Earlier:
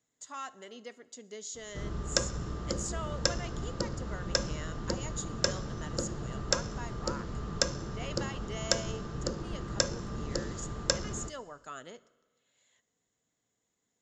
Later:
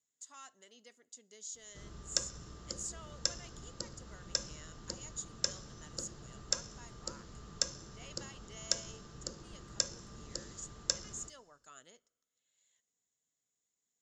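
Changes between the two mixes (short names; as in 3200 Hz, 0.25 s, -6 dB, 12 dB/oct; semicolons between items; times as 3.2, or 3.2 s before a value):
speech: send -10.5 dB; master: add pre-emphasis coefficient 0.8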